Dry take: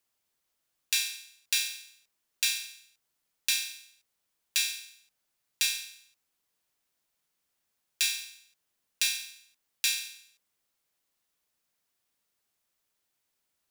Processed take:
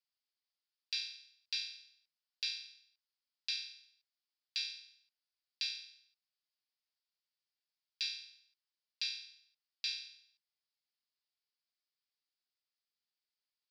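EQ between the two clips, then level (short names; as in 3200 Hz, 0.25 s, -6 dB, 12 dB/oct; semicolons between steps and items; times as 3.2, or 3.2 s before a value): band-pass 4900 Hz, Q 5.8; air absorption 360 m; +11.5 dB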